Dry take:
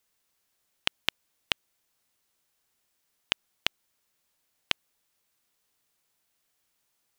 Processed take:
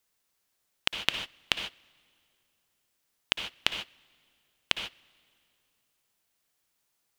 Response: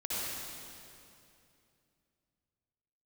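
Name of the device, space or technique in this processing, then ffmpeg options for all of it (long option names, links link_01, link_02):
keyed gated reverb: -filter_complex "[0:a]asplit=3[link_01][link_02][link_03];[1:a]atrim=start_sample=2205[link_04];[link_02][link_04]afir=irnorm=-1:irlink=0[link_05];[link_03]apad=whole_len=316978[link_06];[link_05][link_06]sidechaingate=range=-22dB:threshold=-51dB:ratio=16:detection=peak,volume=-6dB[link_07];[link_01][link_07]amix=inputs=2:normalize=0,volume=-1.5dB"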